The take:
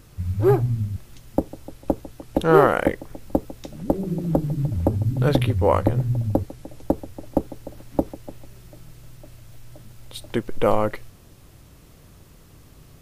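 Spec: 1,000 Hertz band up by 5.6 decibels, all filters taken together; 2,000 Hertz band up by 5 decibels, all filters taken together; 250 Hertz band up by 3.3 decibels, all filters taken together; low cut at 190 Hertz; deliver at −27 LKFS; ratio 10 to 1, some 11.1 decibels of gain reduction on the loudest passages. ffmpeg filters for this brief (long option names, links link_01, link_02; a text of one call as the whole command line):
ffmpeg -i in.wav -af "highpass=190,equalizer=frequency=250:width_type=o:gain=5.5,equalizer=frequency=1000:width_type=o:gain=6,equalizer=frequency=2000:width_type=o:gain=4,acompressor=threshold=-20dB:ratio=10,volume=2.5dB" out.wav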